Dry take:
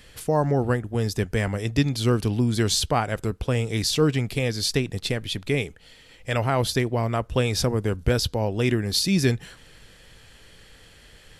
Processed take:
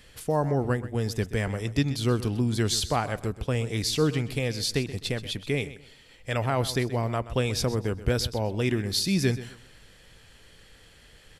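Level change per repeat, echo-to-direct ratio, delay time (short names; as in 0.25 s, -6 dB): -11.5 dB, -14.5 dB, 0.128 s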